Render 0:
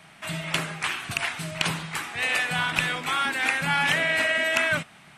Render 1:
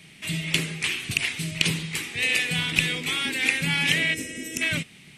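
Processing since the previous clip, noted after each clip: time-frequency box 4.14–4.62 s, 550–5100 Hz -16 dB; high-order bell 980 Hz -15.5 dB; trim +4 dB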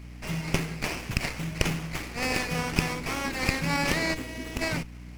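hum 60 Hz, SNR 14 dB; sliding maximum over 9 samples; trim -2 dB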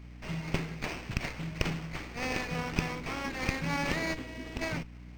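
decimation joined by straight lines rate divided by 4×; trim -4.5 dB

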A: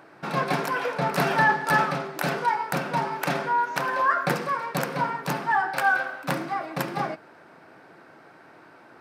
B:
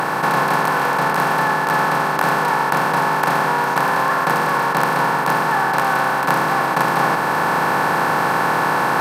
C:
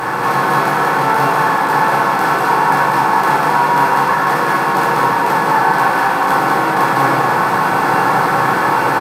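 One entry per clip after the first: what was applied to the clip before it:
spectral levelling over time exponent 0.2; band-stop 1.6 kHz, Q 10; gain riding 0.5 s; trim -2 dB
delay 195 ms -3.5 dB; simulated room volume 400 m³, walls furnished, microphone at 3.9 m; trim -5 dB

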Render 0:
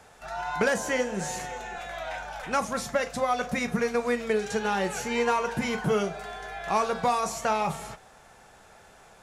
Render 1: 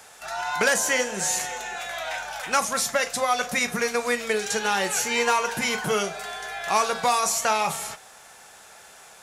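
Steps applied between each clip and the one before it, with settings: tilt EQ +3 dB/octave; trim +3.5 dB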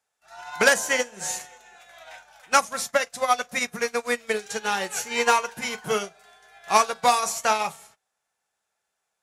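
upward expansion 2.5:1, over -43 dBFS; trim +5.5 dB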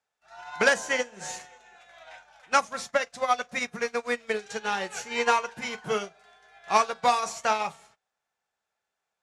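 distance through air 75 m; trim -2.5 dB

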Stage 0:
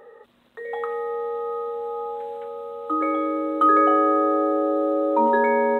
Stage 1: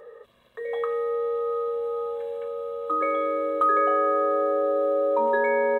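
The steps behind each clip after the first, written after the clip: comb 1.8 ms, depth 71%; compression 2:1, threshold -20 dBFS, peak gain reduction 5 dB; trim -1.5 dB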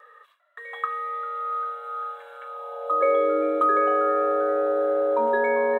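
gate with hold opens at -46 dBFS; frequency-shifting echo 396 ms, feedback 41%, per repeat +130 Hz, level -18 dB; high-pass sweep 1.3 kHz -> 100 Hz, 2.44–4.18 s

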